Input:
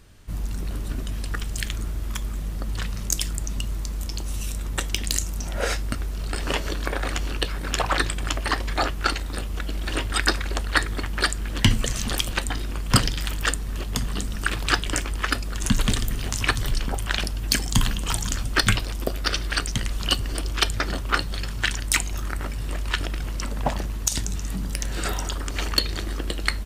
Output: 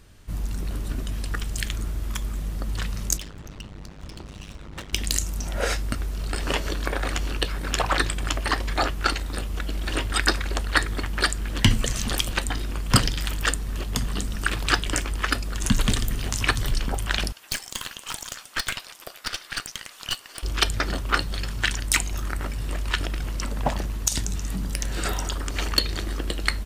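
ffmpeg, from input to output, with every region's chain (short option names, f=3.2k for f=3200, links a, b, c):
-filter_complex "[0:a]asettb=1/sr,asplit=3[a][b][c];[a]atrim=end=3.174[d];[b]atrim=start=3.17:end=4.93,asetpts=PTS-STARTPTS,afade=t=in:d=0.004:c=qsin,afade=t=out:st=1.756:d=0.004:c=qsin,lowpass=3.9k,asoftclip=type=hard:threshold=-29dB,bandreject=f=50:t=h:w=6,bandreject=f=100:t=h:w=6,bandreject=f=150:t=h:w=6,bandreject=f=200:t=h:w=6,bandreject=f=250:t=h:w=6,bandreject=f=300:t=h:w=6,bandreject=f=350:t=h:w=6,bandreject=f=400:t=h:w=6,bandreject=f=450:t=h:w=6,bandreject=f=500:t=h:w=6[e];[c]atrim=start=4.926[f];[d][e]acrossfade=d=0.004:c1=hsin:c2=qsin[g];[g][f]acrossfade=d=0.004:c1=qsin:c2=hsin,asettb=1/sr,asplit=3[h][i][j];[h]atrim=end=17.324[k];[i]atrim=start=17.32:end=20.43,asetpts=PTS-STARTPTS,afade=t=in:d=0.004:c=qsin,afade=t=out:st=3.106:d=0.004:c=qsin,highpass=890,aeval=exprs='(tanh(8.91*val(0)+0.75)-tanh(0.75))/8.91':c=same[l];[j]atrim=start=20.426[m];[k][l]acrossfade=d=0.004:c1=hsin:c2=qsin[n];[n][m]acrossfade=d=0.004:c1=qsin:c2=hsin"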